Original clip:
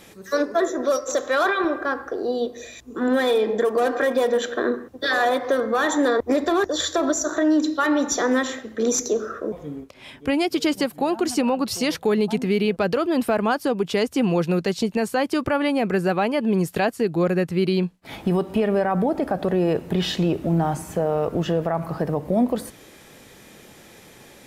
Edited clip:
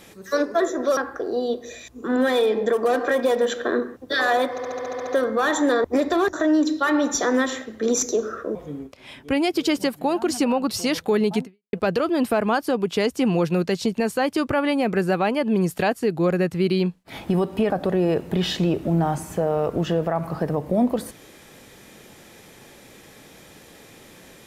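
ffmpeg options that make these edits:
-filter_complex "[0:a]asplit=13[a][b][c][d][e][f][g][h][i][j][k][l][m];[a]atrim=end=0.972[n];[b]atrim=start=1.888:end=5.502[o];[c]atrim=start=5.428:end=5.502[p];[d]atrim=start=5.428:end=5.502[q];[e]atrim=start=5.428:end=5.502[r];[f]atrim=start=5.428:end=5.502[s];[g]atrim=start=5.428:end=5.502[t];[h]atrim=start=5.428:end=5.502[u];[i]atrim=start=5.428:end=5.502[v];[j]atrim=start=5.428:end=6.692[w];[k]atrim=start=7.298:end=12.7,asetpts=PTS-STARTPTS,afade=t=out:st=5.092:d=0.31:c=exp[x];[l]atrim=start=12.7:end=18.672,asetpts=PTS-STARTPTS,afade=t=in:d=0.004:c=hsin[y];[m]atrim=start=19.288[z];[n][o]acrossfade=d=0.004:c1=hsin:c2=hsin[aa];[aa][p]acrossfade=d=0.004:c1=hsin:c2=hsin[ab];[ab][q]acrossfade=d=0.004:c1=hsin:c2=hsin[ac];[ac][r]acrossfade=d=0.004:c1=hsin:c2=hsin[ad];[ad][s]acrossfade=d=0.004:c1=hsin:c2=hsin[ae];[ae][t]acrossfade=d=0.004:c1=hsin:c2=hsin[af];[af][u]acrossfade=d=0.004:c1=hsin:c2=hsin[ag];[ag][v]acrossfade=d=0.004:c1=hsin:c2=hsin[ah];[ah][w]acrossfade=d=0.004:c1=hsin:c2=hsin[ai];[x][y]concat=n=2:v=0:a=1[aj];[ai][aj]acrossfade=d=0.004:c1=hsin:c2=hsin[ak];[ak][z]acrossfade=d=0.004:c1=hsin:c2=hsin"

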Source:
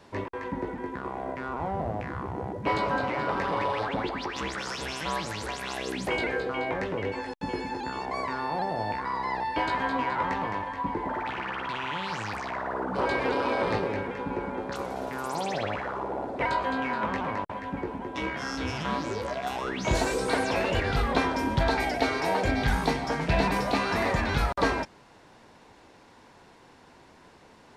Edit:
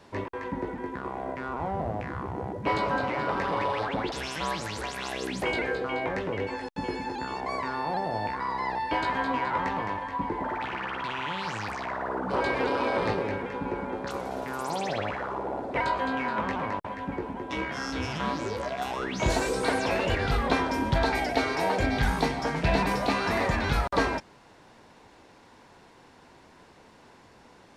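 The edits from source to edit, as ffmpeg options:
-filter_complex "[0:a]asplit=2[a][b];[a]atrim=end=4.122[c];[b]atrim=start=4.768[d];[c][d]acrossfade=d=0.004:c1=hsin:c2=hsin"

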